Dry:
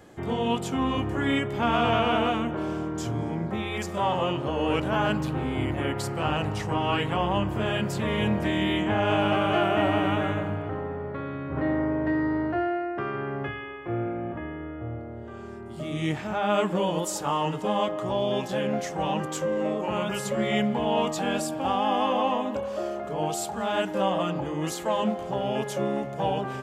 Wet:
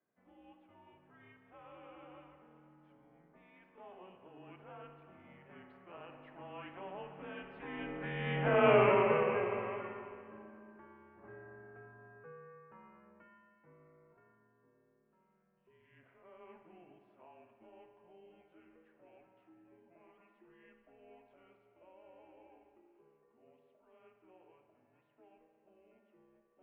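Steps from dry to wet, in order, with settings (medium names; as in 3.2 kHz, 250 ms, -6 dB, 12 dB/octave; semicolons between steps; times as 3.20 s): Doppler pass-by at 8.72 s, 17 m/s, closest 3.6 m; mistuned SSB -180 Hz 410–2800 Hz; spring tank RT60 2 s, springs 55 ms, chirp 55 ms, DRR 6.5 dB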